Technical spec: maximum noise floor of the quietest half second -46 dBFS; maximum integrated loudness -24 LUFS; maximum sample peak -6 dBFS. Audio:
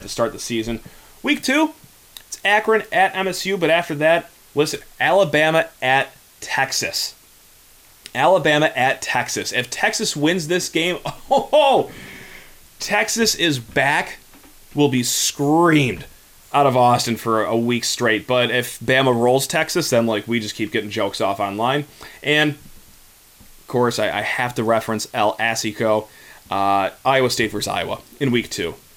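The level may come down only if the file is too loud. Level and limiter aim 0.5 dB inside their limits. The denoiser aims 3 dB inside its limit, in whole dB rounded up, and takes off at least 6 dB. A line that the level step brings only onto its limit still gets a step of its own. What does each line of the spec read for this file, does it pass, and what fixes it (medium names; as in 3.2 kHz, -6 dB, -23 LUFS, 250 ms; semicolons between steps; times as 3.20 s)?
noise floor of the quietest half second -49 dBFS: pass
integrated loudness -19.0 LUFS: fail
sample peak -5.5 dBFS: fail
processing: trim -5.5 dB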